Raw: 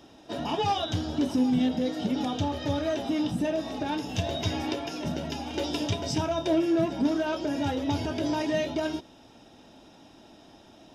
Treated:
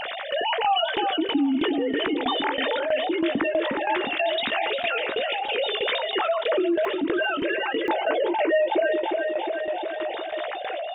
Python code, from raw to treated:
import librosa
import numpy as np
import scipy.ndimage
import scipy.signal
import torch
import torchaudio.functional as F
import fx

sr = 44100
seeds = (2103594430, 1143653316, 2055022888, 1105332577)

y = fx.sine_speech(x, sr)
y = fx.peak_eq(y, sr, hz=2000.0, db=6.0, octaves=1.7)
y = fx.doubler(y, sr, ms=18.0, db=-11.5)
y = fx.echo_feedback(y, sr, ms=358, feedback_pct=45, wet_db=-12)
y = fx.tremolo_shape(y, sr, shape='saw_down', hz=3.1, depth_pct=85)
y = fx.peak_eq(y, sr, hz=590.0, db=fx.steps((0.0, -5.5), (6.85, -13.0), (7.88, 3.5)), octaves=1.4)
y = fx.env_flatten(y, sr, amount_pct=70)